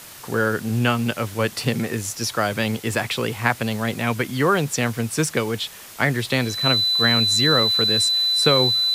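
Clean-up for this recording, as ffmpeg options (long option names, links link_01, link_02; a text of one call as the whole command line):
ffmpeg -i in.wav -af "adeclick=threshold=4,bandreject=frequency=4000:width=30,afwtdn=0.01" out.wav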